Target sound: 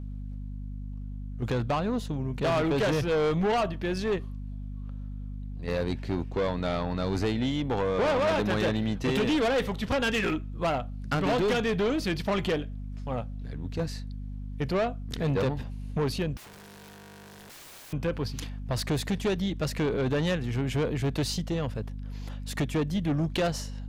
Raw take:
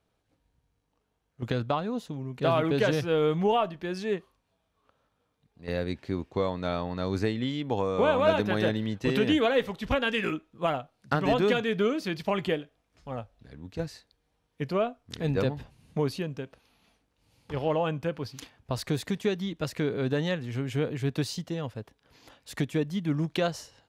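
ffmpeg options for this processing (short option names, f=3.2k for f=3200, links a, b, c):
-filter_complex "[0:a]aeval=exprs='val(0)+0.01*(sin(2*PI*50*n/s)+sin(2*PI*2*50*n/s)/2+sin(2*PI*3*50*n/s)/3+sin(2*PI*4*50*n/s)/4+sin(2*PI*5*50*n/s)/5)':c=same,aeval=exprs='(tanh(22.4*val(0)+0.1)-tanh(0.1))/22.4':c=same,asettb=1/sr,asplit=3[a][b][c];[a]atrim=end=16.374[d];[b]atrim=start=16.37:end=17.93,asetpts=PTS-STARTPTS,afade=t=in:d=0.004:c=qsin,afade=t=out:st=1.556:d=0.004:c=qsin,aeval=exprs='(mod(251*val(0)+1,2)-1)/251':c=same[e];[c]atrim=start=17.926[f];[d][e]acrossfade=d=0.004:c1=hsin:c2=qsin[g];[g][f]acrossfade=d=0.004:c1=qsin:c2=hsin,volume=5dB"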